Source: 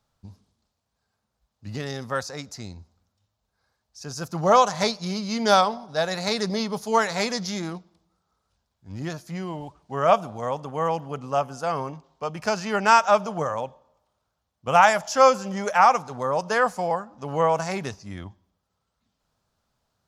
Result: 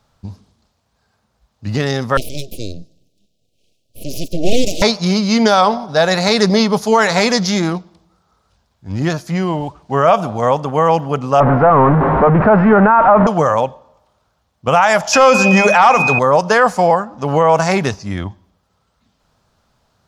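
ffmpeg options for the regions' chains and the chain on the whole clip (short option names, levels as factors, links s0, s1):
-filter_complex "[0:a]asettb=1/sr,asplit=3[s0][s1][s2];[s0]atrim=end=2.174[s3];[s1]atrim=start=2.17:end=4.82,asetpts=PTS-STARTPTS,afade=t=in:d=0.004:c=qsin,afade=t=out:st=2.646:d=0.004:c=qsin,aeval=exprs='abs(val(0))':c=same,asuperstop=centerf=1300:order=12:qfactor=0.68[s4];[s2]atrim=start=4.816[s5];[s3][s4]acrossfade=d=0.004:c1=hsin:c2=qsin[s6];[s6][s5]acrossfade=d=0.004:c1=qsin:c2=hsin,asettb=1/sr,asplit=3[s7][s8][s9];[s7]atrim=end=11.404[s10];[s8]atrim=start=11.4:end=13.27,asetpts=PTS-STARTPTS,afade=t=in:d=0.004:c=qsin,afade=t=out:st=1.866:d=0.004:c=qsin,aeval=exprs='val(0)+0.5*0.0944*sgn(val(0))':c=same,lowpass=f=1500:w=0.5412,lowpass=f=1500:w=1.3066[s11];[s9]atrim=start=13.266[s12];[s10][s11]acrossfade=d=0.004:c1=hsin:c2=qsin[s13];[s13][s12]acrossfade=d=0.004:c1=qsin:c2=hsin,asettb=1/sr,asplit=3[s14][s15][s16];[s14]atrim=end=15.134[s17];[s15]atrim=start=15.13:end=16.19,asetpts=PTS-STARTPTS,afade=t=in:d=0.004:c=qsin,afade=t=out:st=1.056:d=0.004:c=qsin,aeval=exprs='val(0)+0.0224*sin(2*PI*2500*n/s)':c=same,bandreject=f=50:t=h:w=6,bandreject=f=100:t=h:w=6,bandreject=f=150:t=h:w=6,bandreject=f=200:t=h:w=6,bandreject=f=250:t=h:w=6,bandreject=f=300:t=h:w=6,bandreject=f=350:t=h:w=6,bandreject=f=400:t=h:w=6,acontrast=79[s18];[s16]atrim=start=16.186[s19];[s17][s18]acrossfade=d=0.004:c1=hsin:c2=qsin[s20];[s20][s19]acrossfade=d=0.004:c1=qsin:c2=hsin,highshelf=f=7300:g=-7,alimiter=level_in=5.62:limit=0.891:release=50:level=0:latency=1,volume=0.891"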